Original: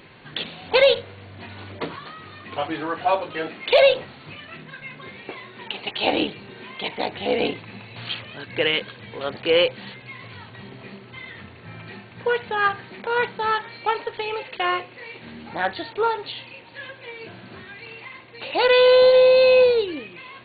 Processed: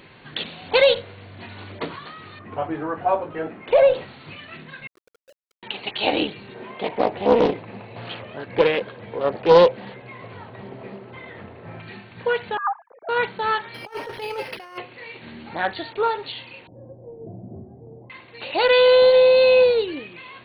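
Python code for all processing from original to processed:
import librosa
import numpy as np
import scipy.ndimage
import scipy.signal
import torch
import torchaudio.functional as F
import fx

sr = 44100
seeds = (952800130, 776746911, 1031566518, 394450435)

y = fx.chain(x, sr, fx.lowpass(hz=1400.0, slope=12),
    fx.low_shelf(hz=230.0, db=4.0), at=(2.39, 3.94))
y = fx.chain(y, sr, fx.sine_speech(),
    fx.gaussian_blur(sigma=23.0),
    fx.quant_companded(bits=4), at=(4.87, 5.63))
y = fx.chain(y, sr, fx.lowpass(hz=1500.0, slope=6),
    fx.peak_eq(hz=590.0, db=8.5, octaves=1.7),
    fx.doppler_dist(depth_ms=0.41), at=(6.54, 11.8))
y = fx.chain(y, sr, fx.sine_speech(),
    fx.dynamic_eq(hz=840.0, q=3.1, threshold_db=-39.0, ratio=4.0, max_db=7),
    fx.lowpass(hz=1100.0, slope=24), at=(12.57, 13.09))
y = fx.chain(y, sr, fx.over_compress(threshold_db=-30.0, ratio=-0.5),
    fx.resample_linear(factor=6), at=(13.74, 14.78))
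y = fx.chain(y, sr, fx.ellip_lowpass(hz=720.0, order=4, stop_db=80),
    fx.low_shelf(hz=230.0, db=10.0), at=(16.67, 18.1))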